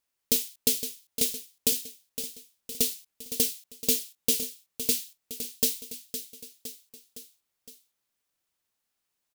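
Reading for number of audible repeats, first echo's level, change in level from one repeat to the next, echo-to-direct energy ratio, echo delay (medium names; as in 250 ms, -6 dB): 4, -10.5 dB, -4.5 dB, -9.0 dB, 512 ms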